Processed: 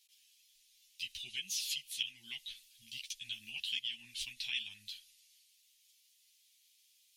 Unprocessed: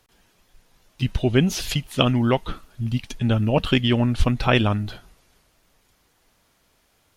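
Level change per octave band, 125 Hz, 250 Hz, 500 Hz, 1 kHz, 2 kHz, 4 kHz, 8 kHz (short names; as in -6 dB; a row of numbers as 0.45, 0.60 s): under -40 dB, under -40 dB, under -40 dB, under -40 dB, -15.0 dB, -9.0 dB, -6.0 dB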